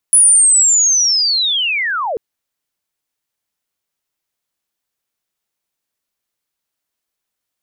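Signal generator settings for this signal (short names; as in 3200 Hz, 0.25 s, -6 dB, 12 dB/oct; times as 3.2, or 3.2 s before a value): chirp linear 10000 Hz -> 400 Hz -5 dBFS -> -17 dBFS 2.04 s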